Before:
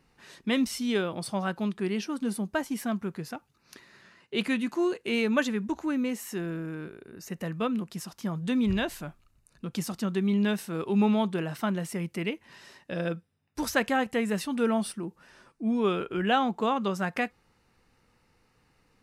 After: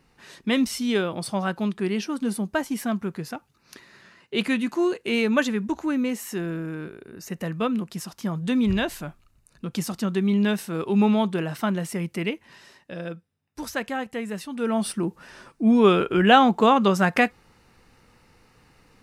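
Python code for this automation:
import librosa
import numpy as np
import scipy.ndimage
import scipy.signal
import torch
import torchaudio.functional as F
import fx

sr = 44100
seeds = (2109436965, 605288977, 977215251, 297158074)

y = fx.gain(x, sr, db=fx.line((12.3, 4.0), (13.01, -3.0), (14.54, -3.0), (15.01, 9.5)))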